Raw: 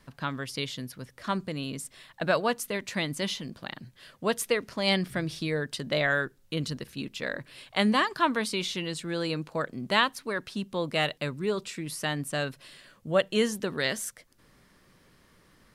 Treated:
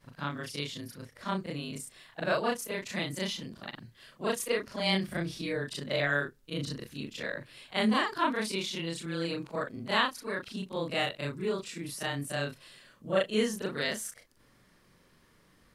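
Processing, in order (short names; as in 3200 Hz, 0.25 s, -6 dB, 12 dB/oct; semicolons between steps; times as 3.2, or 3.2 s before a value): short-time reversal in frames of 84 ms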